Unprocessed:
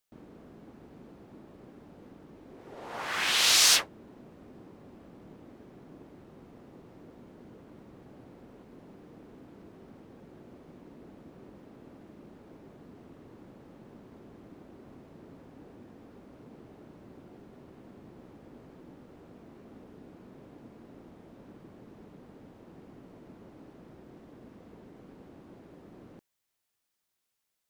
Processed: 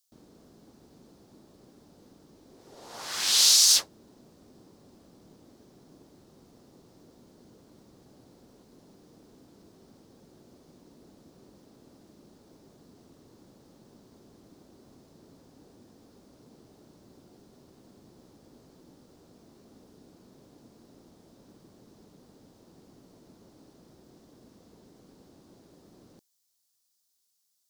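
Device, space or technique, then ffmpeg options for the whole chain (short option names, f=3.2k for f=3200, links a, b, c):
over-bright horn tweeter: -af "highshelf=f=3.4k:t=q:w=1.5:g=12,alimiter=limit=-4.5dB:level=0:latency=1:release=34,volume=-5dB"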